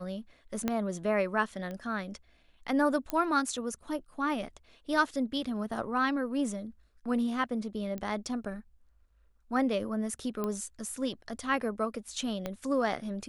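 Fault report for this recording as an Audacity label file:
0.680000	0.680000	click −15 dBFS
1.710000	1.710000	click −27 dBFS
3.100000	3.100000	click −17 dBFS
7.980000	7.980000	click −25 dBFS
10.440000	10.440000	click −20 dBFS
12.460000	12.460000	click −20 dBFS

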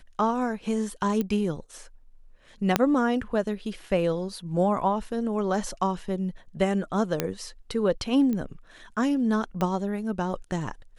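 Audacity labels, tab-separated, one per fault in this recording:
1.210000	1.210000	click −15 dBFS
2.760000	2.760000	click −4 dBFS
7.200000	7.200000	click −9 dBFS
8.330000	8.330000	click −19 dBFS
9.610000	9.610000	click −14 dBFS

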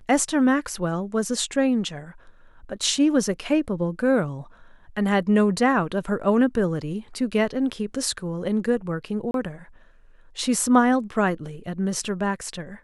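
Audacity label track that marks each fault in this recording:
9.310000	9.340000	drop-out 32 ms

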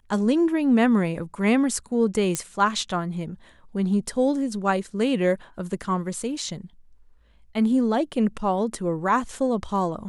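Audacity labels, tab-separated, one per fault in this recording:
2.350000	2.350000	click −10 dBFS

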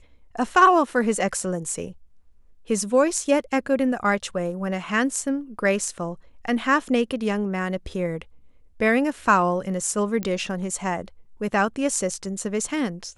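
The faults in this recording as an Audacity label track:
10.230000	10.230000	click −13 dBFS

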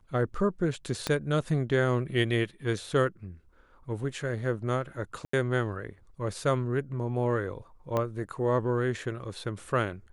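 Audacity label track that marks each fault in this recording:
1.070000	1.070000	click −14 dBFS
5.250000	5.330000	drop-out 84 ms
7.970000	7.970000	click −16 dBFS

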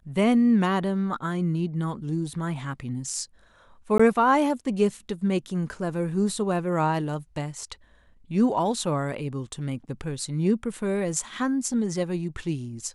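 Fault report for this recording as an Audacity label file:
3.980000	4.000000	drop-out 15 ms

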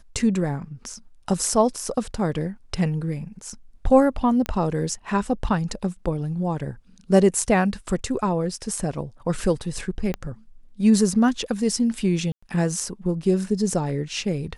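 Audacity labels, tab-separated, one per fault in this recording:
4.460000	4.460000	click −13 dBFS
10.140000	10.140000	click −14 dBFS
12.320000	12.430000	drop-out 105 ms

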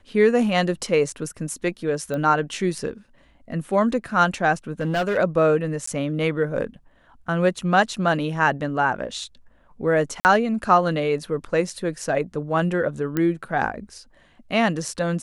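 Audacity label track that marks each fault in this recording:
2.140000	2.140000	click −17 dBFS
4.800000	5.180000	clipping −18.5 dBFS
5.860000	5.870000	drop-out 14 ms
10.200000	10.250000	drop-out 49 ms
13.170000	13.170000	click −11 dBFS

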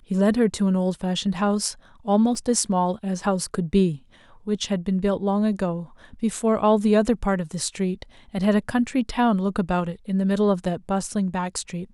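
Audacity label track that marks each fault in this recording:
2.350000	2.350000	drop-out 2.7 ms

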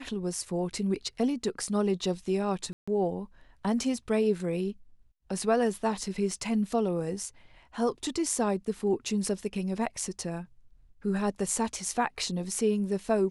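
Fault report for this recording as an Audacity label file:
2.730000	2.880000	drop-out 145 ms

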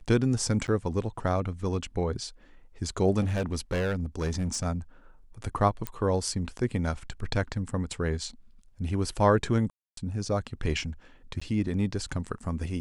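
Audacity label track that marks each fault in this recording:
0.670000	0.680000	drop-out 9.6 ms
3.210000	4.660000	clipping −24.5 dBFS
5.870000	5.870000	click −15 dBFS
9.700000	9.970000	drop-out 273 ms
11.400000	11.410000	drop-out 15 ms

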